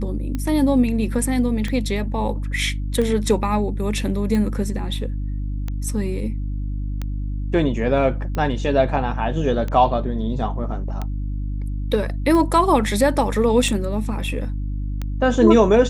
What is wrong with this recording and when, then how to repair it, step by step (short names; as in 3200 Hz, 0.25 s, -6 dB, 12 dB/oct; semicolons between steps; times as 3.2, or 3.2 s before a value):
hum 50 Hz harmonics 6 -25 dBFS
tick 45 rpm -14 dBFS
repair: de-click; de-hum 50 Hz, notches 6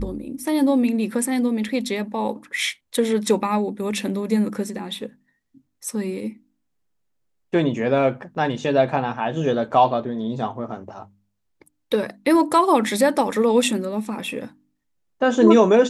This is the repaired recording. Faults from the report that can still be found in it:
none